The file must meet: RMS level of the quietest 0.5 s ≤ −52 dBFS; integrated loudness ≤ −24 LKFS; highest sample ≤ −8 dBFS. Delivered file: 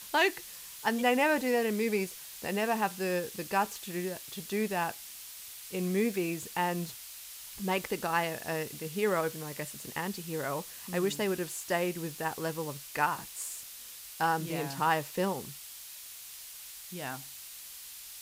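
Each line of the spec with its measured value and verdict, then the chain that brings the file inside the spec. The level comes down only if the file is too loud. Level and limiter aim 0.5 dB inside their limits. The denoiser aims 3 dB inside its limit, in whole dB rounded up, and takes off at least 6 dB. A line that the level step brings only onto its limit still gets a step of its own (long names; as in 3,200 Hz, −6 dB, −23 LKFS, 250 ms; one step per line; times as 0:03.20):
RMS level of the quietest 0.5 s −47 dBFS: out of spec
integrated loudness −32.5 LKFS: in spec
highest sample −13.0 dBFS: in spec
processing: broadband denoise 8 dB, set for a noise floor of −47 dBFS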